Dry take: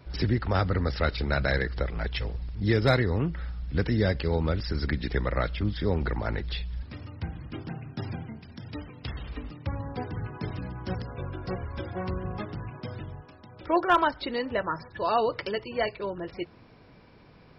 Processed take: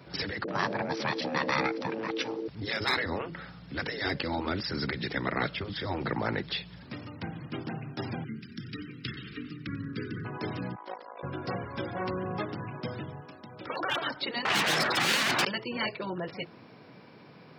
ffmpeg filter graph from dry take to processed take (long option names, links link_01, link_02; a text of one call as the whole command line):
ffmpeg -i in.wav -filter_complex "[0:a]asettb=1/sr,asplit=3[link_01][link_02][link_03];[link_01]atrim=end=0.444[link_04];[link_02]atrim=start=0.44:end=2.48,asetpts=PTS-STARTPTS,afade=type=in:duration=0.004:curve=qsin,afade=type=out:start_time=2.036:duration=0.004:curve=qsin,acrossover=split=250[link_05][link_06];[link_06]adelay=40[link_07];[link_05][link_07]amix=inputs=2:normalize=0,atrim=end_sample=89964,aeval=exprs='val(0)*sin(2*PI*390*n/s)':channel_layout=same[link_08];[link_03]atrim=start=2.476[link_09];[link_04][link_08]acrossfade=duration=0.004:curve1=hsin:curve2=qsin[link_10];[link_10][link_09]acrossfade=duration=0.004:curve1=qsin:curve2=hsin,asettb=1/sr,asplit=3[link_11][link_12][link_13];[link_11]atrim=end=8.244[link_14];[link_12]atrim=start=8.24:end=10.25,asetpts=PTS-STARTPTS,afade=type=in:duration=0.004:curve=qsin,afade=type=out:start_time=2.006:duration=0.004:curve=qsin,asuperstop=centerf=740:order=8:qfactor=0.81,aecho=1:1:91|182|273|364:0.126|0.0579|0.0266|0.0123,atrim=end_sample=88641[link_15];[link_13]atrim=start=10.246[link_16];[link_14][link_15]acrossfade=duration=0.004:curve1=hsin:curve2=qsin[link_17];[link_17][link_16]acrossfade=duration=0.004:curve1=qsin:curve2=hsin,asettb=1/sr,asplit=3[link_18][link_19][link_20];[link_18]atrim=end=10.754[link_21];[link_19]atrim=start=10.75:end=11.23,asetpts=PTS-STARTPTS,afade=type=in:duration=0.004:curve=qsin,afade=type=out:start_time=0.476:duration=0.004:curve=qsin,highpass=frequency=420:width=0.5412,highpass=frequency=420:width=1.3066,equalizer=frequency=430:width_type=q:width=4:gain=-10,equalizer=frequency=950:width_type=q:width=4:gain=4,equalizer=frequency=1500:width_type=q:width=4:gain=-7,equalizer=frequency=2700:width_type=q:width=4:gain=-9,lowpass=frequency=3900:width=0.5412,lowpass=frequency=3900:width=1.3066,tremolo=f=54:d=0.788[link_22];[link_20]atrim=start=11.226[link_23];[link_21][link_22]acrossfade=duration=0.004:curve1=hsin:curve2=qsin[link_24];[link_24][link_23]acrossfade=duration=0.004:curve1=qsin:curve2=hsin,asettb=1/sr,asplit=3[link_25][link_26][link_27];[link_25]atrim=end=14.454[link_28];[link_26]atrim=start=14.45:end=15.45,asetpts=PTS-STARTPTS,afade=type=in:duration=0.004:curve=qsin,afade=type=out:start_time=0.996:duration=0.004:curve=qsin,lowshelf=frequency=270:gain=-9,asplit=2[link_29][link_30];[link_30]highpass=frequency=720:poles=1,volume=38dB,asoftclip=type=tanh:threshold=-14dB[link_31];[link_29][link_31]amix=inputs=2:normalize=0,lowpass=frequency=3400:poles=1,volume=-6dB[link_32];[link_27]atrim=start=15.446[link_33];[link_28][link_32]acrossfade=duration=0.004:curve1=hsin:curve2=qsin[link_34];[link_34][link_33]acrossfade=duration=0.004:curve1=qsin:curve2=hsin,highpass=frequency=130:width=0.5412,highpass=frequency=130:width=1.3066,afftfilt=real='re*lt(hypot(re,im),0.158)':imag='im*lt(hypot(re,im),0.158)':win_size=1024:overlap=0.75,volume=3.5dB" out.wav